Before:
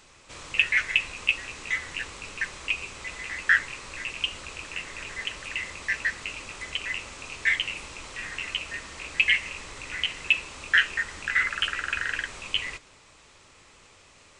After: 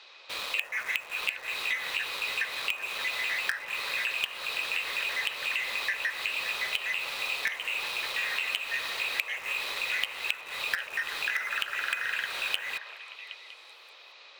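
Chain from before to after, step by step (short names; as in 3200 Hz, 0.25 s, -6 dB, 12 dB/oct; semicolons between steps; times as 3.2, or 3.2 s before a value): HPF 450 Hz 24 dB/oct; resonant high shelf 5900 Hz -14 dB, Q 3; small resonant body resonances 2500/3800 Hz, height 8 dB, ringing for 35 ms; treble ducked by the level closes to 1400 Hz, closed at -18 dBFS; in parallel at -10.5 dB: companded quantiser 2-bit; on the sum: compressor 10:1, threshold -27 dBFS, peak gain reduction 17 dB; on a send: delay with a stepping band-pass 0.192 s, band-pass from 640 Hz, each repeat 0.7 oct, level -5 dB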